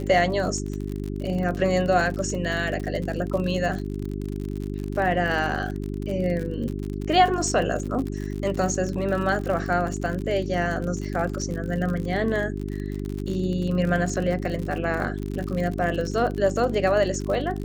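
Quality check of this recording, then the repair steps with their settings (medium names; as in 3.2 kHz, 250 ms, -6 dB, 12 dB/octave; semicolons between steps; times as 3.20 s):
crackle 52 per s -29 dBFS
hum 50 Hz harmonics 8 -30 dBFS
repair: de-click; de-hum 50 Hz, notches 8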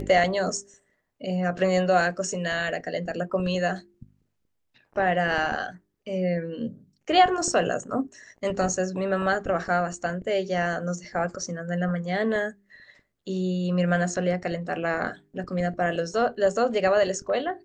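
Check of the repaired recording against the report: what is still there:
nothing left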